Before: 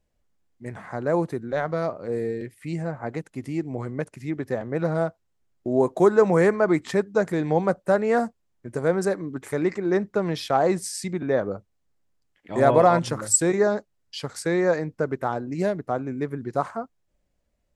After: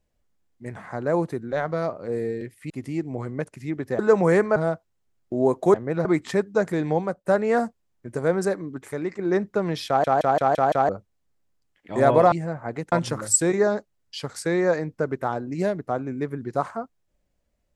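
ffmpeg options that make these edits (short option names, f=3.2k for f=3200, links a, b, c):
-filter_complex "[0:a]asplit=16[a][b][c][d][e][f][g][h][i][j][k][l][m][n][o][p];[a]atrim=end=2.702[q];[b]atrim=start=3.298:end=4.592[r];[c]atrim=start=6.078:end=6.652[s];[d]atrim=start=4.898:end=6.082[t];[e]atrim=start=4.588:end=4.902[u];[f]atrim=start=6.648:end=7.85,asetpts=PTS-STARTPTS,afade=t=out:st=0.832:d=0.37:silence=0.223872[v];[g]atrim=start=7.85:end=9.79,asetpts=PTS-STARTPTS,afade=t=in:d=0.004:c=hsin:silence=0.223872,afade=t=out:st=1.22:d=0.72:silence=0.446684[w];[h]atrim=start=9.79:end=10.642,asetpts=PTS-STARTPTS,afade=t=in:d=0.004:c=hsin:silence=0.446684[x];[i]atrim=start=10.468:end=10.642[y];[j]atrim=start=10.468:end=10.642[z];[k]atrim=start=10.468:end=10.642[aa];[l]atrim=start=10.468:end=10.642[ab];[m]atrim=start=10.468:end=10.642[ac];[n]atrim=start=11.488:end=12.922[ad];[o]atrim=start=2.698:end=3.302[ae];[p]atrim=start=12.918[af];[q][r]acrossfade=d=0.004:c1=hsin:c2=hsin[ag];[ag][s]acrossfade=d=0.004:c1=hsin:c2=hsin[ah];[ah][t]acrossfade=d=0.004:c1=hsin:c2=hsin[ai];[ai][u]acrossfade=d=0.004:c1=hsin:c2=hsin[aj];[v][w][x]concat=n=3:v=0:a=1[ak];[aj][ak]acrossfade=d=0.004:c1=hsin:c2=hsin[al];[al][y]acrossfade=d=0.004:c1=hsin:c2=hsin[am];[am][z]acrossfade=d=0.004:c1=hsin:c2=hsin[an];[an][aa]acrossfade=d=0.004:c1=hsin:c2=hsin[ao];[ao][ab]acrossfade=d=0.004:c1=hsin:c2=hsin[ap];[ap][ac]acrossfade=d=0.004:c1=hsin:c2=hsin[aq];[aq][ad]acrossfade=d=0.004:c1=hsin:c2=hsin[ar];[ar][ae]acrossfade=d=0.004:c1=hsin:c2=hsin[as];[as][af]acrossfade=d=0.004:c1=hsin:c2=hsin"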